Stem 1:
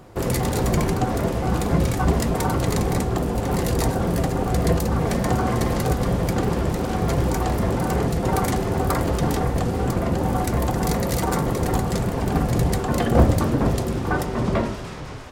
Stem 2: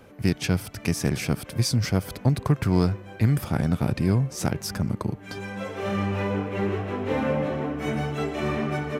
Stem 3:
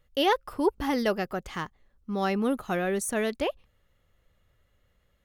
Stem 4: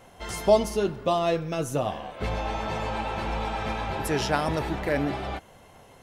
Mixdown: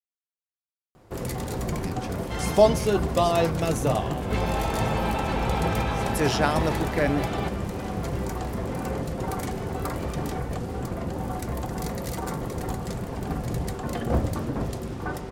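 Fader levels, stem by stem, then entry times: -8.5 dB, -13.0 dB, mute, +2.0 dB; 0.95 s, 1.60 s, mute, 2.10 s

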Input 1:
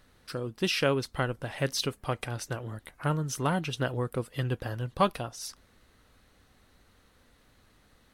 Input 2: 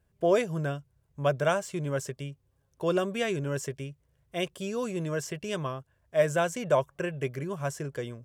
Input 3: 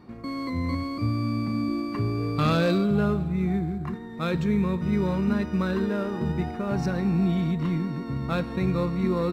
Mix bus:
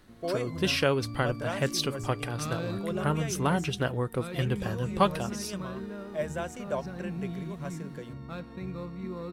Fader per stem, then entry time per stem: +1.0 dB, -8.5 dB, -12.5 dB; 0.00 s, 0.00 s, 0.00 s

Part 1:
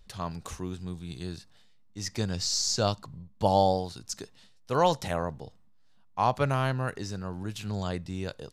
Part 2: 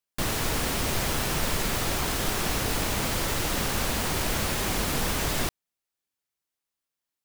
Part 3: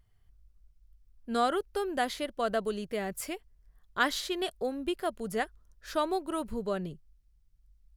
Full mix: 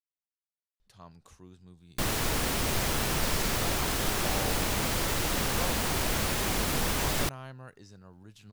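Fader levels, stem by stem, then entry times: -16.0 dB, -1.5 dB, mute; 0.80 s, 1.80 s, mute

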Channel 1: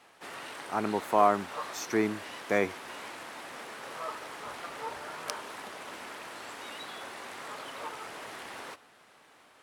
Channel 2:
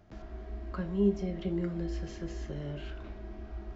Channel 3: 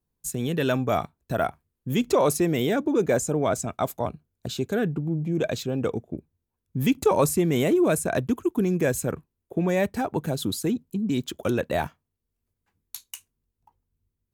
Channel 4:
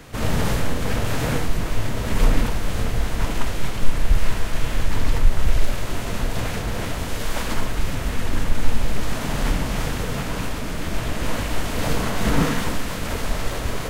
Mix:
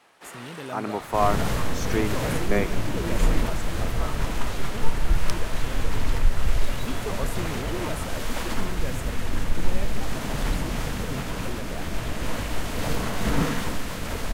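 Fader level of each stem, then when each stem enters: +0.5 dB, -2.0 dB, -13.5 dB, -4.0 dB; 0.00 s, 1.50 s, 0.00 s, 1.00 s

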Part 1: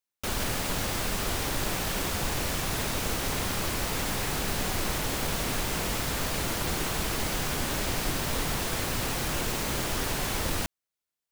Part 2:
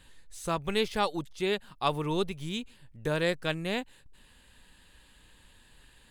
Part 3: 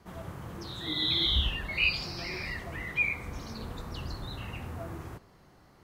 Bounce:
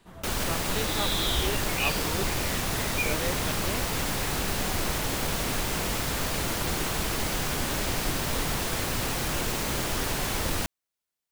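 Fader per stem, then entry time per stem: +1.0 dB, -6.0 dB, -3.5 dB; 0.00 s, 0.00 s, 0.00 s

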